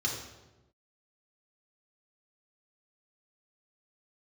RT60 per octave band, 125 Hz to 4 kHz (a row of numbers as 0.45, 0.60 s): 1.4, 1.2, 1.2, 0.95, 0.85, 0.80 s